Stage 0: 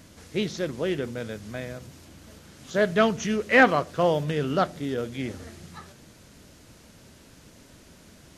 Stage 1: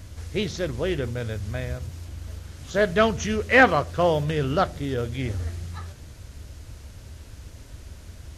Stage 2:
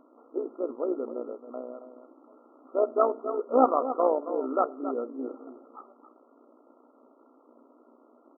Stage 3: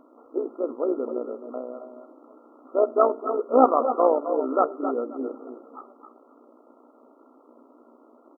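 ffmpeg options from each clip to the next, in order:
-af "lowshelf=f=120:t=q:w=1.5:g=13.5,volume=2dB"
-af "aecho=1:1:273:0.282,tremolo=f=61:d=0.621,afftfilt=real='re*between(b*sr/4096,230,1400)':imag='im*between(b*sr/4096,230,1400)':win_size=4096:overlap=0.75"
-af "aecho=1:1:260:0.266,volume=4dB"

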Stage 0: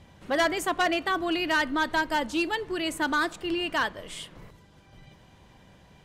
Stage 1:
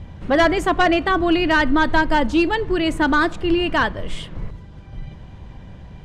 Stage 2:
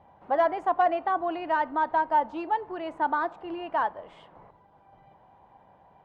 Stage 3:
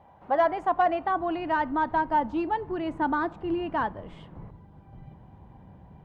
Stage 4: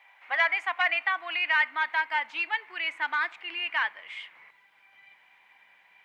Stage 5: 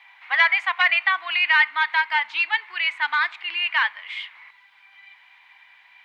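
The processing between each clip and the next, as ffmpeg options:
-af "aemphasis=mode=reproduction:type=bsi,volume=8dB"
-af "bandpass=f=820:t=q:w=3.6:csg=0"
-af "asubboost=boost=9:cutoff=240,volume=1.5dB"
-af "highpass=f=2.2k:t=q:w=5.3,volume=7dB"
-af "equalizer=f=250:t=o:w=1:g=-8,equalizer=f=500:t=o:w=1:g=-8,equalizer=f=1k:t=o:w=1:g=7,equalizer=f=2k:t=o:w=1:g=4,equalizer=f=4k:t=o:w=1:g=11"

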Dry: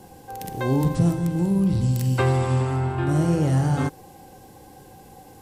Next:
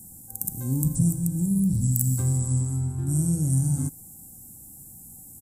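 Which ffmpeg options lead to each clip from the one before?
-af "firequalizer=gain_entry='entry(240,0);entry(390,-18);entry(2800,-27);entry(7800,15)':delay=0.05:min_phase=1,volume=-2dB"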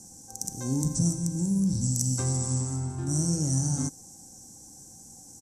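-af "lowpass=f=5.9k:t=q:w=8.6,bass=f=250:g=-12,treble=f=4k:g=-6,volume=6dB"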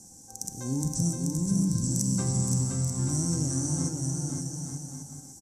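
-af "aecho=1:1:520|884|1139|1317|1442:0.631|0.398|0.251|0.158|0.1,volume=-2dB"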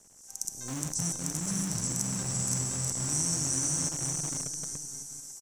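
-filter_complex "[0:a]acrossover=split=1500[a][b];[a]acrusher=bits=6:dc=4:mix=0:aa=0.000001[c];[b]dynaudnorm=f=150:g=3:m=13dB[d];[c][d]amix=inputs=2:normalize=0,volume=-8.5dB"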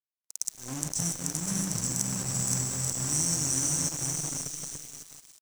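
-af "aeval=exprs='sgn(val(0))*max(abs(val(0))-0.00891,0)':c=same,volume=3.5dB"

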